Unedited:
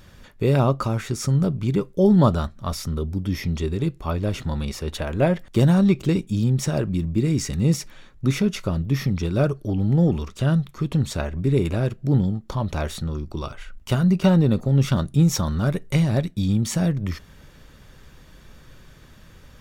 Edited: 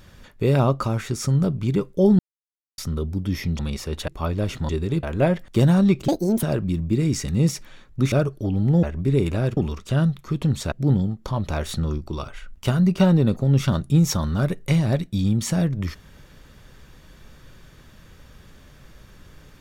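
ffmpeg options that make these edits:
-filter_complex "[0:a]asplit=15[s0][s1][s2][s3][s4][s5][s6][s7][s8][s9][s10][s11][s12][s13][s14];[s0]atrim=end=2.19,asetpts=PTS-STARTPTS,afade=t=out:st=2.186:d=0.004:c=hsin[s15];[s1]atrim=start=2.19:end=2.78,asetpts=PTS-STARTPTS,volume=0[s16];[s2]atrim=start=2.78:end=3.592,asetpts=PTS-STARTPTS,afade=t=in:d=0.004:c=hsin[s17];[s3]atrim=start=4.538:end=5.032[s18];[s4]atrim=start=3.928:end=4.542[s19];[s5]atrim=start=3.588:end=3.932[s20];[s6]atrim=start=5.028:end=6.084[s21];[s7]atrim=start=6.08:end=6.68,asetpts=PTS-STARTPTS,asetrate=75852,aresample=44100[s22];[s8]atrim=start=6.676:end=8.372[s23];[s9]atrim=start=9.358:end=10.072[s24];[s10]atrim=start=11.218:end=11.962[s25];[s11]atrim=start=10.068:end=11.222[s26];[s12]atrim=start=11.958:end=12.932[s27];[s13]atrim=start=12.928:end=13.222,asetpts=PTS-STARTPTS,volume=1.41[s28];[s14]atrim=start=13.218[s29];[s15][s16][s17]concat=n=3:v=0:a=1[s30];[s30][s18]acrossfade=d=0.004:c1=hsin:c2=hsin[s31];[s31][s19]acrossfade=d=0.004:c1=hsin:c2=hsin[s32];[s32][s20]acrossfade=d=0.004:c1=hsin:c2=hsin[s33];[s33][s21]acrossfade=d=0.004:c1=hsin:c2=hsin[s34];[s34][s22]acrossfade=d=0.004:c1=hsin:c2=hsin[s35];[s35][s23]acrossfade=d=0.004:c1=hsin:c2=hsin[s36];[s36][s24]acrossfade=d=0.004:c1=hsin:c2=hsin[s37];[s37][s25]acrossfade=d=0.004:c1=hsin:c2=hsin[s38];[s38][s26]acrossfade=d=0.004:c1=hsin:c2=hsin[s39];[s39][s27]acrossfade=d=0.004:c1=hsin:c2=hsin[s40];[s40][s28]acrossfade=d=0.004:c1=hsin:c2=hsin[s41];[s41][s29]acrossfade=d=0.004:c1=hsin:c2=hsin"

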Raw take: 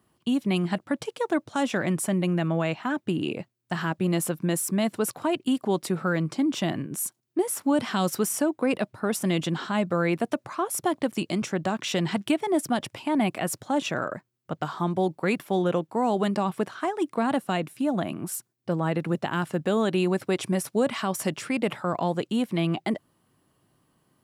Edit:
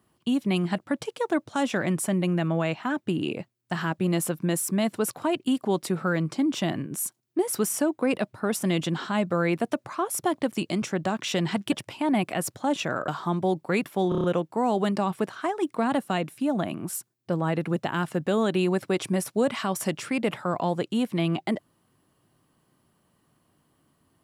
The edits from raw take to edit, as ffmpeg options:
-filter_complex "[0:a]asplit=9[s0][s1][s2][s3][s4][s5][s6][s7][s8];[s0]atrim=end=7.532[s9];[s1]atrim=start=8.128:end=12.322[s10];[s2]atrim=start=12.778:end=14.142[s11];[s3]atrim=start=14.618:end=15.662[s12];[s4]atrim=start=15.628:end=15.662[s13];[s5]atrim=start=15.628:end=15.662[s14];[s6]atrim=start=15.628:end=15.662[s15];[s7]atrim=start=15.628:end=15.662[s16];[s8]atrim=start=15.628[s17];[s9][s10]acrossfade=d=0.004:c1=hsin:c2=hsin[s18];[s18][s11]acrossfade=d=0.004:c1=hsin:c2=hsin[s19];[s19][s12]acrossfade=d=0.004:c1=hsin:c2=hsin[s20];[s20][s13]acrossfade=d=0.004:c1=hsin:c2=hsin[s21];[s21][s14]acrossfade=d=0.004:c1=hsin:c2=hsin[s22];[s22][s15]acrossfade=d=0.004:c1=hsin:c2=hsin[s23];[s23][s16]acrossfade=d=0.004:c1=hsin:c2=hsin[s24];[s24][s17]acrossfade=d=0.004:c1=hsin:c2=hsin"

